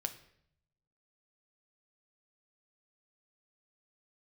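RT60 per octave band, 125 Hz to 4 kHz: 1.4, 0.85, 0.75, 0.65, 0.65, 0.60 s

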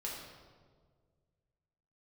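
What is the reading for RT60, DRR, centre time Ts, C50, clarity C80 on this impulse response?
1.7 s, -4.0 dB, 71 ms, 1.0 dB, 3.5 dB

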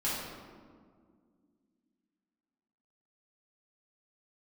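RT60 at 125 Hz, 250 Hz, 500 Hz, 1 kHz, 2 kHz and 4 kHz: 2.6, 3.3, 2.2, 1.7, 1.2, 0.95 s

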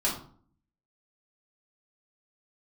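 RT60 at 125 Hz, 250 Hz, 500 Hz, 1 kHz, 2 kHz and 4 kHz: 0.80, 0.75, 0.50, 0.50, 0.35, 0.35 s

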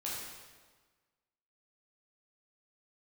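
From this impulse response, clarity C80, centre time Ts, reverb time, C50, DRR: 1.5 dB, 90 ms, 1.4 s, -0.5 dB, -6.5 dB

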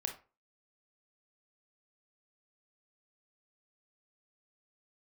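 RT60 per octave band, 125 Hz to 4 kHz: 0.35, 0.35, 0.35, 0.30, 0.30, 0.20 s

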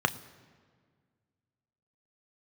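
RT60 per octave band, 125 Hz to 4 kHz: 2.2, 2.3, 1.9, 1.7, 1.5, 1.2 s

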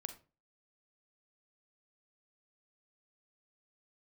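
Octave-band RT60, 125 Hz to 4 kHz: 0.40, 0.40, 0.35, 0.30, 0.25, 0.25 s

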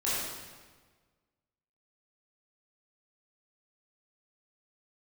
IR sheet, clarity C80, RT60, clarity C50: 0.0 dB, 1.4 s, -3.0 dB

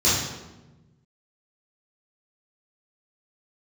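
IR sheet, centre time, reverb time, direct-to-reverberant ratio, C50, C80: 73 ms, 1.1 s, -11.5 dB, 0.0 dB, 4.0 dB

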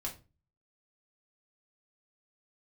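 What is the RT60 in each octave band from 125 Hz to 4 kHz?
0.60, 0.45, 0.35, 0.30, 0.25, 0.25 s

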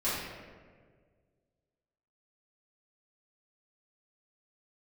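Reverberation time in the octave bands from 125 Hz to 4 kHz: 2.3, 1.9, 2.0, 1.4, 1.3, 0.90 s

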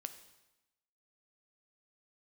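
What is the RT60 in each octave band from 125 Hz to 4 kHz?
1.0, 1.0, 0.95, 1.0, 0.95, 0.95 s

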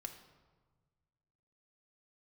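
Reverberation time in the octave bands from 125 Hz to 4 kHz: 2.2, 1.7, 1.5, 1.4, 1.0, 0.85 s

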